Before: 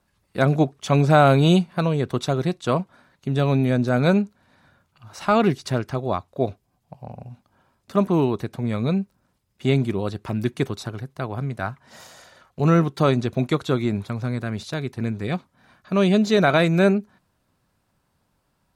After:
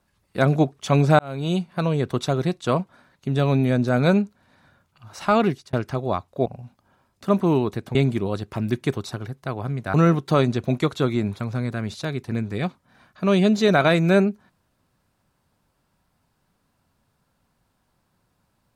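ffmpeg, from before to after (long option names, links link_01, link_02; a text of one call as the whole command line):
ffmpeg -i in.wav -filter_complex "[0:a]asplit=6[link_01][link_02][link_03][link_04][link_05][link_06];[link_01]atrim=end=1.19,asetpts=PTS-STARTPTS,afade=type=out:start_time=1.186:duration=0.004:curve=hsin[link_07];[link_02]atrim=start=1.19:end=5.73,asetpts=PTS-STARTPTS,afade=type=in:duration=0.75,afade=type=out:start_time=4.09:duration=0.45:curve=qsin[link_08];[link_03]atrim=start=5.73:end=6.462,asetpts=PTS-STARTPTS,afade=type=in:duration=0.004:curve=hsin[link_09];[link_04]atrim=start=7.128:end=8.622[link_10];[link_05]atrim=start=9.678:end=11.672[link_11];[link_06]atrim=start=12.628[link_12];[link_07][link_08][link_09]concat=n=3:v=0:a=1[link_13];[link_13][link_10]acrossfade=duration=0.004:curve1=hsin:curve2=hsin[link_14];[link_14][link_11]acrossfade=duration=0.004:curve1=hsin:curve2=hsin[link_15];[link_15][link_12]acrossfade=duration=0.004:curve1=hsin:curve2=hsin" out.wav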